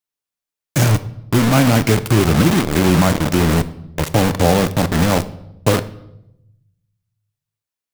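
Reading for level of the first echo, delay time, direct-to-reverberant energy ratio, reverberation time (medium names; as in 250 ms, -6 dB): no echo, no echo, 12.0 dB, 0.85 s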